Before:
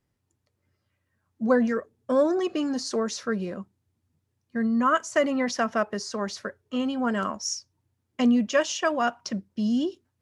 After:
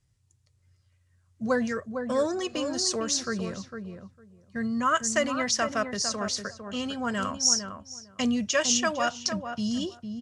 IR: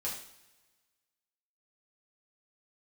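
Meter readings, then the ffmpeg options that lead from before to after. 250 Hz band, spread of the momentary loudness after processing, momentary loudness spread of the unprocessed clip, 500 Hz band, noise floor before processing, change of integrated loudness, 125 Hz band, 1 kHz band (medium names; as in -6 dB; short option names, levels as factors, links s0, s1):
-4.5 dB, 14 LU, 10 LU, -3.5 dB, -78 dBFS, -1.0 dB, 0.0 dB, -2.0 dB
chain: -filter_complex "[0:a]crystalizer=i=4.5:c=0,lowpass=f=8900:w=0.5412,lowpass=f=8900:w=1.3066,lowshelf=f=170:t=q:w=1.5:g=11.5,bandreject=f=860:w=28,asplit=2[s0][s1];[s1]adelay=454,lowpass=f=1300:p=1,volume=0.473,asplit=2[s2][s3];[s3]adelay=454,lowpass=f=1300:p=1,volume=0.16,asplit=2[s4][s5];[s5]adelay=454,lowpass=f=1300:p=1,volume=0.16[s6];[s2][s4][s6]amix=inputs=3:normalize=0[s7];[s0][s7]amix=inputs=2:normalize=0,volume=0.631"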